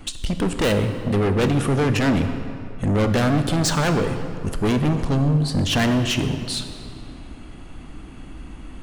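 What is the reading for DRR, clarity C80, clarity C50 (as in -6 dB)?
7.0 dB, 9.5 dB, 8.0 dB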